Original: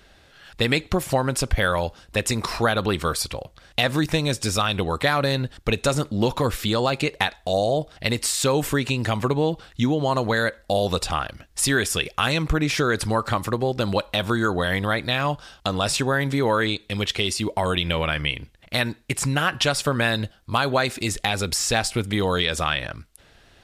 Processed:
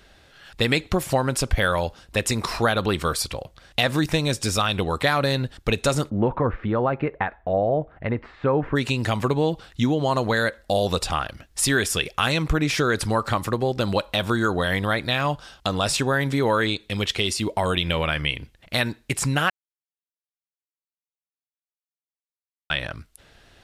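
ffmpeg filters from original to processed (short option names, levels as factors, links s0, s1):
-filter_complex "[0:a]asplit=3[s0][s1][s2];[s0]afade=t=out:st=6.09:d=0.02[s3];[s1]lowpass=f=1800:w=0.5412,lowpass=f=1800:w=1.3066,afade=t=in:st=6.09:d=0.02,afade=t=out:st=8.75:d=0.02[s4];[s2]afade=t=in:st=8.75:d=0.02[s5];[s3][s4][s5]amix=inputs=3:normalize=0,asplit=3[s6][s7][s8];[s6]atrim=end=19.5,asetpts=PTS-STARTPTS,afade=t=out:st=19.496:d=0.004:c=hsin[s9];[s7]atrim=start=19.5:end=22.7,asetpts=PTS-STARTPTS,volume=0[s10];[s8]atrim=start=22.7,asetpts=PTS-STARTPTS,afade=t=in:d=0.004:c=hsin[s11];[s9][s10][s11]concat=n=3:v=0:a=1"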